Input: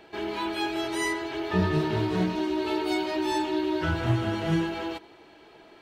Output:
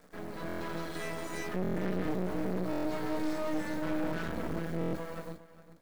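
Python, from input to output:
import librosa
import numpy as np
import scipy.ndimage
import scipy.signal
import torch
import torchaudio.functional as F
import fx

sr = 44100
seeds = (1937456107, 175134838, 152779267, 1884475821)

y = fx.octave_divider(x, sr, octaves=1, level_db=-6.0)
y = fx.dereverb_blind(y, sr, rt60_s=1.8)
y = fx.quant_dither(y, sr, seeds[0], bits=8, dither='none')
y = fx.peak_eq(y, sr, hz=180.0, db=9.5, octaves=0.26)
y = fx.fixed_phaser(y, sr, hz=550.0, stages=8)
y = fx.echo_feedback(y, sr, ms=408, feedback_pct=26, wet_db=-16.0)
y = fx.rev_gated(y, sr, seeds[1], gate_ms=410, shape='rising', drr_db=-5.0)
y = np.clip(10.0 ** (26.0 / 20.0) * y, -1.0, 1.0) / 10.0 ** (26.0 / 20.0)
y = fx.graphic_eq(y, sr, hz=(250, 500, 2000), db=(10, 10, 5))
y = np.maximum(y, 0.0)
y = fx.buffer_glitch(y, sr, at_s=(0.47, 1.62, 2.71, 4.79), block=1024, repeats=5)
y = F.gain(torch.from_numpy(y), -8.5).numpy()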